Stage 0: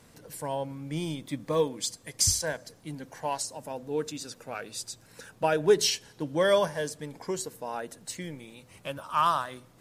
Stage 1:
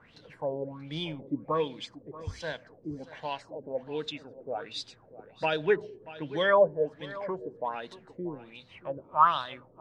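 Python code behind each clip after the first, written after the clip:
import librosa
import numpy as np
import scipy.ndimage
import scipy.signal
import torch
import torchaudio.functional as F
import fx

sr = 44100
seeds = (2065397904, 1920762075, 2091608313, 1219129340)

y = fx.filter_lfo_lowpass(x, sr, shape='sine', hz=1.3, low_hz=370.0, high_hz=4000.0, q=5.7)
y = y + 10.0 ** (-17.0 / 20.0) * np.pad(y, (int(633 * sr / 1000.0), 0))[:len(y)]
y = F.gain(torch.from_numpy(y), -4.5).numpy()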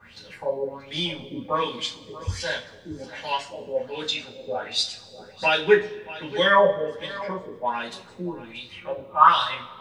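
y = fx.high_shelf(x, sr, hz=2500.0, db=11.5)
y = fx.rev_double_slope(y, sr, seeds[0], early_s=0.24, late_s=1.5, knee_db=-22, drr_db=-7.5)
y = F.gain(torch.from_numpy(y), -3.0).numpy()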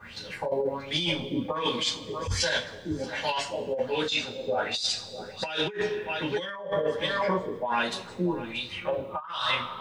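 y = fx.dynamic_eq(x, sr, hz=6100.0, q=0.92, threshold_db=-37.0, ratio=4.0, max_db=4)
y = fx.over_compress(y, sr, threshold_db=-29.0, ratio=-1.0)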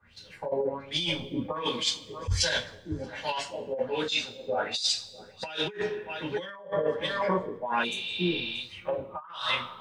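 y = fx.spec_repair(x, sr, seeds[1], start_s=7.87, length_s=0.68, low_hz=510.0, high_hz=5700.0, source='after')
y = fx.band_widen(y, sr, depth_pct=70)
y = F.gain(torch.from_numpy(y), -2.0).numpy()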